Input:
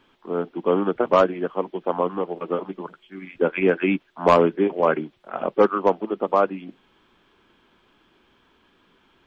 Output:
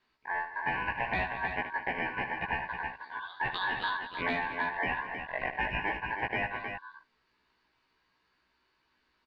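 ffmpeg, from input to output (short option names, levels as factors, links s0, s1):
-filter_complex "[0:a]lowpass=4500,aemphasis=mode=production:type=50fm,afwtdn=0.0562,asettb=1/sr,asplit=3[s0][s1][s2];[s0]atrim=end=2.674[s3];[s1]atrim=start=2.67:end=3.64,asetpts=PTS-STARTPTS,afade=t=in:d=0.004:c=qsin,afade=t=out:st=0.966:d=0.004:c=qsin,equalizer=f=2400:w=1.3:g=8[s4];[s2]atrim=start=3.636[s5];[s3][s4]acrossfade=d=0.004:c1=hsin:c2=qsin[s6];[s6][s5]acrossfade=d=0.004:c1=qsin:c2=hsin,asplit=2[s7][s8];[s8]acompressor=threshold=0.0398:ratio=6,volume=0.708[s9];[s7][s9]amix=inputs=2:normalize=0,alimiter=limit=0.335:level=0:latency=1,acrossover=split=130|650|1300[s10][s11][s12][s13];[s10]acompressor=threshold=0.00141:ratio=4[s14];[s11]acompressor=threshold=0.0251:ratio=4[s15];[s12]acompressor=threshold=0.0178:ratio=4[s16];[s13]acompressor=threshold=0.0178:ratio=4[s17];[s14][s15][s16][s17]amix=inputs=4:normalize=0,aeval=exprs='val(0)*sin(2*PI*1300*n/s)':c=same,asplit=2[s18][s19];[s19]adelay=16,volume=0.794[s20];[s18][s20]amix=inputs=2:normalize=0,aecho=1:1:76|185|216|314:0.282|0.119|0.178|0.447,volume=0.75"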